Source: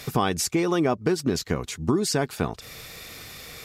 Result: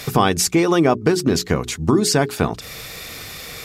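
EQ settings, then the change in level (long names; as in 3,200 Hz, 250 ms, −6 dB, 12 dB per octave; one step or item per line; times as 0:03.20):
mains-hum notches 60/120/180/240/300/360/420 Hz
+7.5 dB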